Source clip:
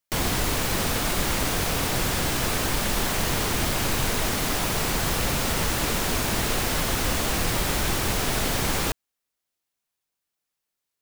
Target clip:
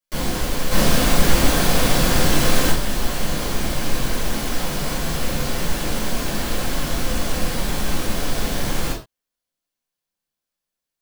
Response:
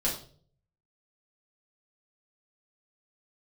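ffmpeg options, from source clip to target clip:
-filter_complex "[0:a]asettb=1/sr,asplit=3[a][b][c];[a]atrim=end=0.714[d];[b]atrim=start=0.71:end=2.71,asetpts=PTS-STARTPTS,afade=t=in:d=0.004:c=qsin,afade=t=out:st=1.996:d=0.004:c=qsin,acontrast=82[e];[c]atrim=start=2.706[f];[d][e]acrossfade=d=0.004:c1=hsin:c2=qsin[g];[g][f]acrossfade=d=0.004:c1=qsin:c2=hsin[h];[1:a]atrim=start_sample=2205,atrim=end_sample=6174[i];[h][i]afir=irnorm=-1:irlink=0,volume=-8.5dB"

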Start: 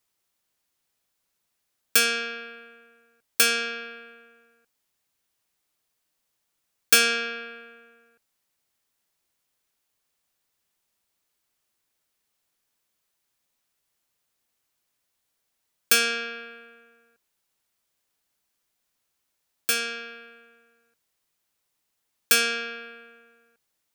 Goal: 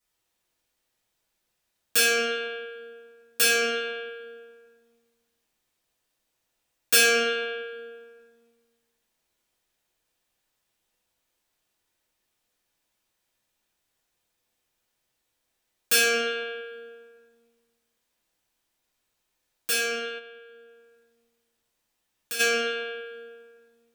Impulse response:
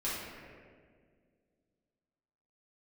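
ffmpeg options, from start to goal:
-filter_complex "[1:a]atrim=start_sample=2205,asetrate=66150,aresample=44100[a];[0:a][a]afir=irnorm=-1:irlink=0,asplit=3[b][c][d];[b]afade=t=out:st=20.18:d=0.02[e];[c]acompressor=threshold=-52dB:ratio=1.5,afade=t=in:st=20.18:d=0.02,afade=t=out:st=22.39:d=0.02[f];[d]afade=t=in:st=22.39:d=0.02[g];[e][f][g]amix=inputs=3:normalize=0"

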